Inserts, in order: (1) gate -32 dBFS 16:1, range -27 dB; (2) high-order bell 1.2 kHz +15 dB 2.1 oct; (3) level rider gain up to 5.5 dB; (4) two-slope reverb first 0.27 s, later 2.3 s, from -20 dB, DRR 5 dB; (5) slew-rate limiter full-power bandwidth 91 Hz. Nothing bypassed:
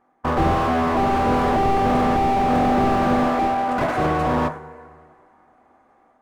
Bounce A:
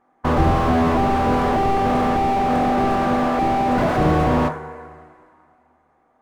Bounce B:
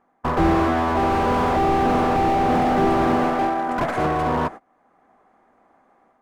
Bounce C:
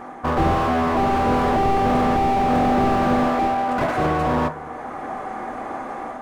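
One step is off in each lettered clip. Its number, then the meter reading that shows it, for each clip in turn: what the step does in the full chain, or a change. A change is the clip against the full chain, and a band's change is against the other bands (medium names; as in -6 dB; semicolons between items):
3, crest factor change +1.5 dB; 4, momentary loudness spread change +1 LU; 1, momentary loudness spread change +9 LU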